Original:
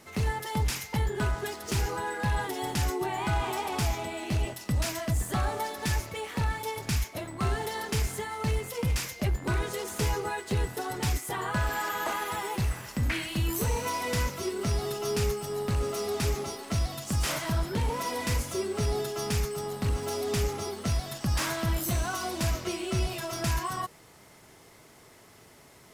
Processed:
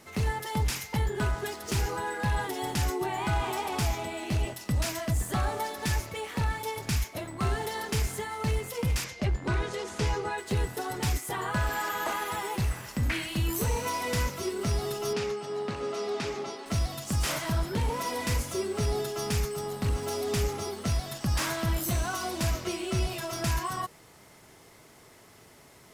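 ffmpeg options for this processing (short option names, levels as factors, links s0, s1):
-filter_complex "[0:a]asettb=1/sr,asplit=3[s0][s1][s2];[s0]atrim=end=9.044[s3];[s1]atrim=start=9.04:end=10.38,asetpts=PTS-STARTPTS,afade=t=in:d=0.004:c=qsin,afade=t=out:st=1.336:d=0.004:c=qsin,lowpass=6200[s4];[s2]atrim=start=10.376[s5];[s3][s4]acrossfade=d=0.004:c1=hsin:c2=qsin[s6];[s6][s5]acrossfade=d=0.004:c1=qsin:c2=hsin,asettb=1/sr,asplit=3[s7][s8][s9];[s7]atrim=end=15.134[s10];[s8]atrim=start=15.13:end=16.66,asetpts=PTS-STARTPTS,afade=t=in:d=0.004:c=qsin,afade=t=out:st=1.526:d=0.004:c=qsin,highpass=210,lowpass=4800[s11];[s9]atrim=start=16.656[s12];[s10][s11]acrossfade=d=0.004:c1=hsin:c2=qsin[s13];[s13][s12]acrossfade=d=0.004:c1=qsin:c2=hsin"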